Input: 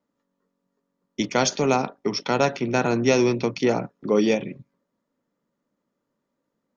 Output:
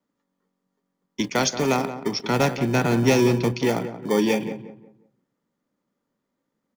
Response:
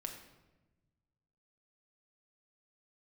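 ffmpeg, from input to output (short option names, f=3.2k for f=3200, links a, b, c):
-filter_complex "[0:a]asettb=1/sr,asplit=3[a][b][c];[a]atrim=end=2.194[d];[b]atrim=start=2.19:end=3.52,asetpts=PTS-STARTPTS,afade=t=in:d=0.004:c=qsin,afade=t=out:st=1.326:d=0.004:c=qsin,lowshelf=f=150:g=10[e];[c]atrim=start=3.516[f];[d][e]acrossfade=d=0.004:c1=hsin:c2=qsin[g];[g][f]acrossfade=d=0.004:c1=qsin:c2=hsin,acrossover=split=440|620[h][i][j];[i]acrusher=samples=33:mix=1:aa=0.000001[k];[h][k][j]amix=inputs=3:normalize=0,asplit=2[l][m];[m]adelay=179,lowpass=f=1.6k:p=1,volume=-10.5dB,asplit=2[n][o];[o]adelay=179,lowpass=f=1.6k:p=1,volume=0.33,asplit=2[p][q];[q]adelay=179,lowpass=f=1.6k:p=1,volume=0.33,asplit=2[r][s];[s]adelay=179,lowpass=f=1.6k:p=1,volume=0.33[t];[l][n][p][r][t]amix=inputs=5:normalize=0"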